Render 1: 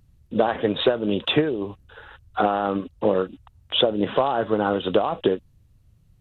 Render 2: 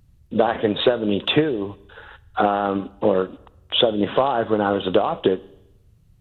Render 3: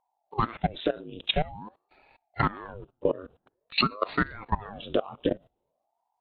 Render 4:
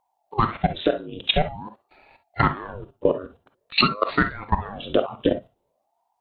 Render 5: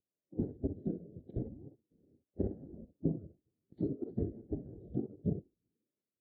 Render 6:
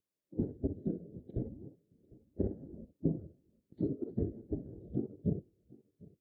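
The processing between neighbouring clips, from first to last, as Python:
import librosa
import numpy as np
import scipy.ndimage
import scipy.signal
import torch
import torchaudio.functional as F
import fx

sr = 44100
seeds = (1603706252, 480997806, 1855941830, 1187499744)

y1 = fx.rev_schroeder(x, sr, rt60_s=0.9, comb_ms=31, drr_db=20.0)
y1 = y1 * librosa.db_to_amplitude(2.0)
y2 = fx.noise_reduce_blind(y1, sr, reduce_db=11)
y2 = fx.level_steps(y2, sr, step_db=19)
y2 = fx.ring_lfo(y2, sr, carrier_hz=450.0, swing_pct=90, hz=0.49)
y3 = fx.rev_gated(y2, sr, seeds[0], gate_ms=80, shape='rising', drr_db=9.0)
y3 = y3 * librosa.db_to_amplitude(5.5)
y4 = scipy.signal.sosfilt(scipy.signal.butter(2, 120.0, 'highpass', fs=sr, output='sos'), y3)
y4 = fx.spec_gate(y4, sr, threshold_db=-10, keep='weak')
y4 = scipy.signal.sosfilt(scipy.signal.cheby2(4, 50, 1000.0, 'lowpass', fs=sr, output='sos'), y4)
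y4 = y4 * librosa.db_to_amplitude(3.0)
y5 = fx.notch(y4, sr, hz=740.0, q=12.0)
y5 = y5 + 10.0 ** (-23.0 / 20.0) * np.pad(y5, (int(751 * sr / 1000.0), 0))[:len(y5)]
y5 = y5 * librosa.db_to_amplitude(1.0)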